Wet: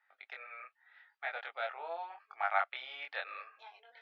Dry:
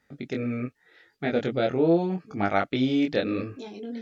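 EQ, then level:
Butterworth high-pass 800 Hz 36 dB per octave
high-frequency loss of the air 380 metres
high-shelf EQ 4,600 Hz −4.5 dB
0.0 dB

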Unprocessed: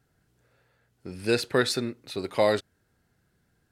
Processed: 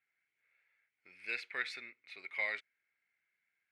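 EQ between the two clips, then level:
resonant band-pass 2,200 Hz, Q 13
+8.0 dB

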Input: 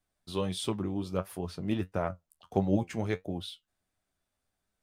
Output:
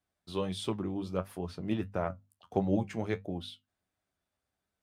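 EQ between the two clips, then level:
high-pass filter 46 Hz
high-shelf EQ 5,600 Hz −7 dB
mains-hum notches 50/100/150/200/250 Hz
−1.0 dB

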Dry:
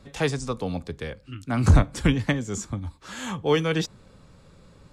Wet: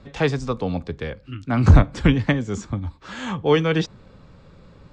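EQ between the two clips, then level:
high-frequency loss of the air 130 metres
+4.5 dB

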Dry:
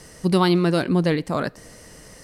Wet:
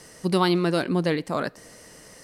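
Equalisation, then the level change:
low-shelf EQ 120 Hz −11.5 dB
−1.5 dB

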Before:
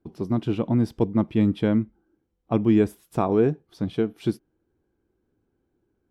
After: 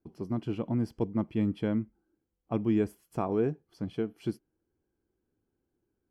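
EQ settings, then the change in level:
Butterworth band-reject 3,700 Hz, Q 6.8
−8.0 dB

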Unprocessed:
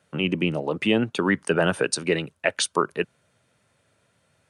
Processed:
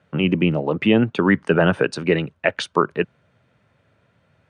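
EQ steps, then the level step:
low-pass filter 6,800 Hz 12 dB per octave
bass and treble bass +4 dB, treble −13 dB
+4.0 dB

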